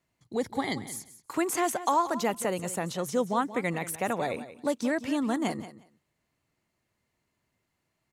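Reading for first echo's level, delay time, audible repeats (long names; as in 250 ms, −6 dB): −14.0 dB, 180 ms, 2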